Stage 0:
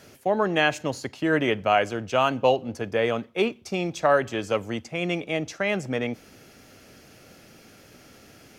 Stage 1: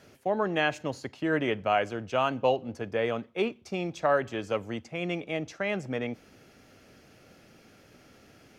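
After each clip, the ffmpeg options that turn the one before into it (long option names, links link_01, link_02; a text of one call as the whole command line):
ffmpeg -i in.wav -af "highshelf=frequency=5600:gain=-8,volume=-4.5dB" out.wav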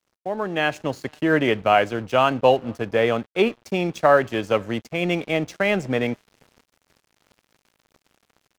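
ffmpeg -i in.wav -filter_complex "[0:a]asplit=2[link_01][link_02];[link_02]adelay=489.8,volume=-29dB,highshelf=frequency=4000:gain=-11[link_03];[link_01][link_03]amix=inputs=2:normalize=0,aeval=exprs='sgn(val(0))*max(abs(val(0))-0.00316,0)':channel_layout=same,dynaudnorm=framelen=150:gausssize=9:maxgain=10dB" out.wav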